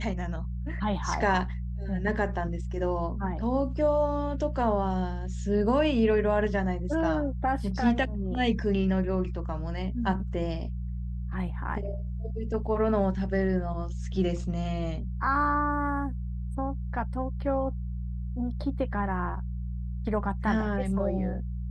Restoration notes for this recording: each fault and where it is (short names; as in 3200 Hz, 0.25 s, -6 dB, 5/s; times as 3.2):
hum 60 Hz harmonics 3 -33 dBFS